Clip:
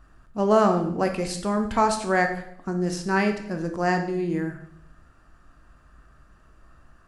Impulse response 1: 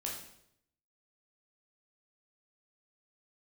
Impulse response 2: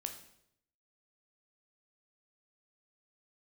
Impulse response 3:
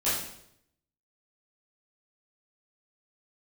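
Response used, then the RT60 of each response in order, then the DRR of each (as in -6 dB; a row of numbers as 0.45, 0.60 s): 2; 0.75, 0.75, 0.75 s; -3.0, 5.0, -12.5 dB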